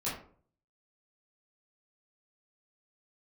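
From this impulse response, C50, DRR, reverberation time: 4.5 dB, −9.5 dB, 0.50 s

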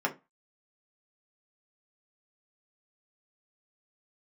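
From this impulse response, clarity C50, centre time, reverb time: 16.0 dB, 9 ms, 0.25 s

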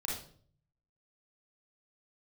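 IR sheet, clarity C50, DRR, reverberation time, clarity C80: 1.0 dB, −4.0 dB, 0.50 s, 7.5 dB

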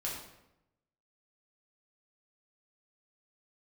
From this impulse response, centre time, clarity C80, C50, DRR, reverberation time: 49 ms, 5.5 dB, 3.0 dB, −5.0 dB, 0.85 s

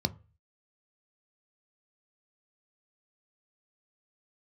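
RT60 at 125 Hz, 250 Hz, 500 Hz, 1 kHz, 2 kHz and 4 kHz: 0.50, 0.30, 0.35, 0.35, 0.35, 0.25 seconds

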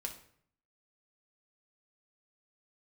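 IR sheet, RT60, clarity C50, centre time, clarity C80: 0.60 s, 10.0 dB, 14 ms, 14.0 dB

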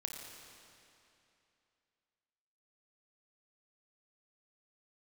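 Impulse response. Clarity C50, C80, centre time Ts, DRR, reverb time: 2.0 dB, 3.0 dB, 96 ms, 1.5 dB, 2.8 s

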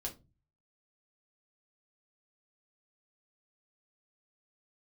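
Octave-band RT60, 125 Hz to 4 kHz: 0.65, 0.45, 0.30, 0.25, 0.20, 0.20 seconds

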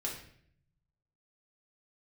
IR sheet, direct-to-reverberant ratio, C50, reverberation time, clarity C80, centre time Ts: −3.5 dB, 5.5 dB, 0.60 s, 9.0 dB, 31 ms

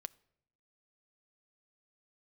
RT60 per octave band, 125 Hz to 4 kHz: 1.0, 1.0, 0.80, 0.70, 0.65, 0.55 seconds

